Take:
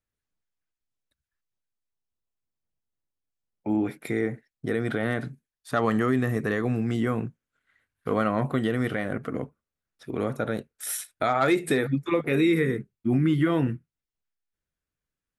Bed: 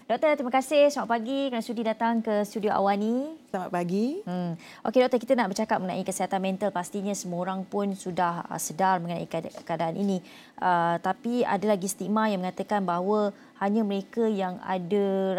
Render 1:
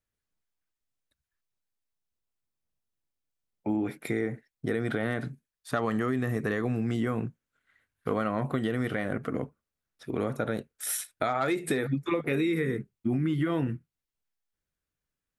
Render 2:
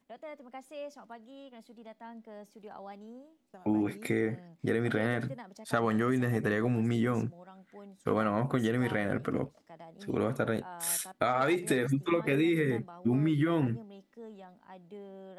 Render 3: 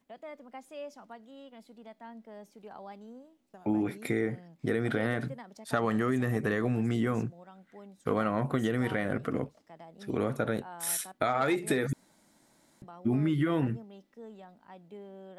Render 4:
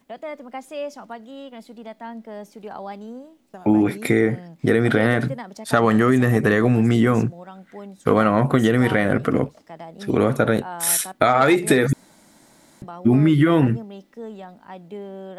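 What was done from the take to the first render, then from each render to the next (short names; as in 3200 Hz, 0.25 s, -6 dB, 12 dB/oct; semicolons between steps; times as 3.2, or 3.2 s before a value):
compressor, threshold -24 dBFS, peak gain reduction 7 dB
add bed -22 dB
11.93–12.82 room tone
gain +12 dB; limiter -2 dBFS, peak gain reduction 1 dB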